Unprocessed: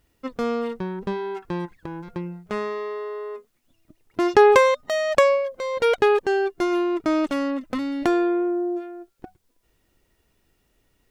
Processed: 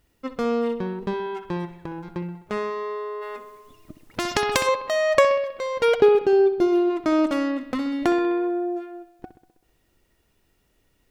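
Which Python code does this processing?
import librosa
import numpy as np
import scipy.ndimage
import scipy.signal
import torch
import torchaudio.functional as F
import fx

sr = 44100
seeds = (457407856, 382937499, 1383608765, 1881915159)

y = fx.graphic_eq_10(x, sr, hz=(125, 250, 500, 1000, 2000, 8000), db=(4, 5, 4, -6, -8, -9), at=(5.99, 6.89), fade=0.02)
y = fx.echo_bbd(y, sr, ms=64, stages=2048, feedback_pct=64, wet_db=-13)
y = fx.spectral_comp(y, sr, ratio=2.0, at=(3.21, 4.66), fade=0.02)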